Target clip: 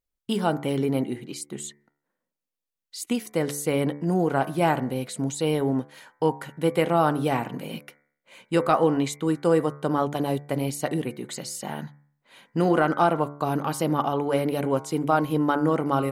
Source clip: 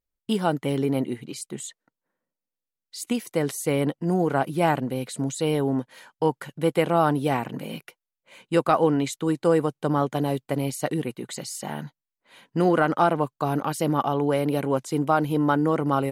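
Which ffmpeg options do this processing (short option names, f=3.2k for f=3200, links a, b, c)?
-af "bandreject=f=72.4:t=h:w=4,bandreject=f=144.8:t=h:w=4,bandreject=f=217.2:t=h:w=4,bandreject=f=289.6:t=h:w=4,bandreject=f=362:t=h:w=4,bandreject=f=434.4:t=h:w=4,bandreject=f=506.8:t=h:w=4,bandreject=f=579.2:t=h:w=4,bandreject=f=651.6:t=h:w=4,bandreject=f=724:t=h:w=4,bandreject=f=796.4:t=h:w=4,bandreject=f=868.8:t=h:w=4,bandreject=f=941.2:t=h:w=4,bandreject=f=1.0136k:t=h:w=4,bandreject=f=1.086k:t=h:w=4,bandreject=f=1.1584k:t=h:w=4,bandreject=f=1.2308k:t=h:w=4,bandreject=f=1.3032k:t=h:w=4,bandreject=f=1.3756k:t=h:w=4,bandreject=f=1.448k:t=h:w=4,bandreject=f=1.5204k:t=h:w=4,bandreject=f=1.5928k:t=h:w=4,bandreject=f=1.6652k:t=h:w=4,bandreject=f=1.7376k:t=h:w=4,bandreject=f=1.81k:t=h:w=4,bandreject=f=1.8824k:t=h:w=4,bandreject=f=1.9548k:t=h:w=4,bandreject=f=2.0272k:t=h:w=4,bandreject=f=2.0996k:t=h:w=4,bandreject=f=2.172k:t=h:w=4,bandreject=f=2.2444k:t=h:w=4,bandreject=f=2.3168k:t=h:w=4"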